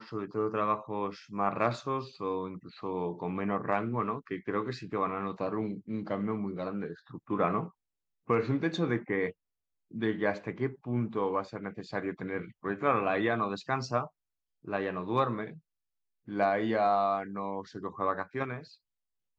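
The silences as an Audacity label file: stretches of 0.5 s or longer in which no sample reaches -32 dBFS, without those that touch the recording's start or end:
7.640000	8.300000	silence
9.290000	9.960000	silence
14.040000	14.680000	silence
15.470000	16.310000	silence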